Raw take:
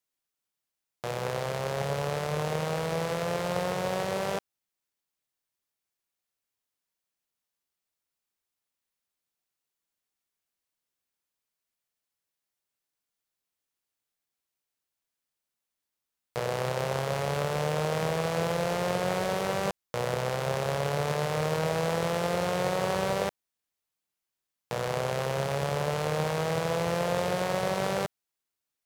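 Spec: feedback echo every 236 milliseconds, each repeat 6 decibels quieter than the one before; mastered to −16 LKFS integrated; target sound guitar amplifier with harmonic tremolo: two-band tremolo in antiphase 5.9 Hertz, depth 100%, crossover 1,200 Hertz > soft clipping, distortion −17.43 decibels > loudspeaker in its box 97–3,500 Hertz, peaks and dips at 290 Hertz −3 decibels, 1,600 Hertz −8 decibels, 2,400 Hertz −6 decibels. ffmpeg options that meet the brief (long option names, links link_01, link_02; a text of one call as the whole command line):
ffmpeg -i in.wav -filter_complex "[0:a]aecho=1:1:236|472|708|944|1180|1416:0.501|0.251|0.125|0.0626|0.0313|0.0157,acrossover=split=1200[link_01][link_02];[link_01]aeval=exprs='val(0)*(1-1/2+1/2*cos(2*PI*5.9*n/s))':channel_layout=same[link_03];[link_02]aeval=exprs='val(0)*(1-1/2-1/2*cos(2*PI*5.9*n/s))':channel_layout=same[link_04];[link_03][link_04]amix=inputs=2:normalize=0,asoftclip=threshold=-22.5dB,highpass=97,equalizer=frequency=290:width_type=q:width=4:gain=-3,equalizer=frequency=1600:width_type=q:width=4:gain=-8,equalizer=frequency=2400:width_type=q:width=4:gain=-6,lowpass=frequency=3500:width=0.5412,lowpass=frequency=3500:width=1.3066,volume=19.5dB" out.wav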